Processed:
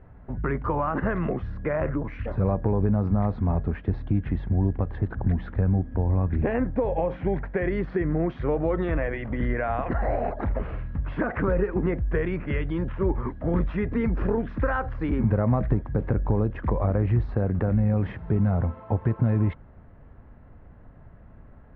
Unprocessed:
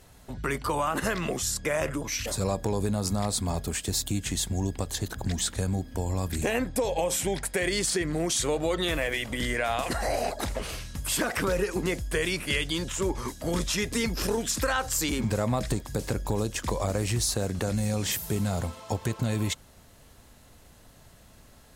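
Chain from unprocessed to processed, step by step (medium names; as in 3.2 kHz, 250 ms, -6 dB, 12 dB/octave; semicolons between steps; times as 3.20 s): inverse Chebyshev low-pass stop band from 7.4 kHz, stop band 70 dB; bass shelf 270 Hz +8 dB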